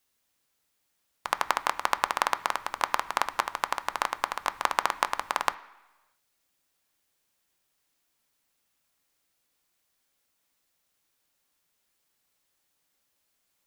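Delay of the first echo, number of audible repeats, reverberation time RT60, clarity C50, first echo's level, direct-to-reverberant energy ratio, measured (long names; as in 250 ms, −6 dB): no echo audible, no echo audible, 1.1 s, 17.0 dB, no echo audible, 11.0 dB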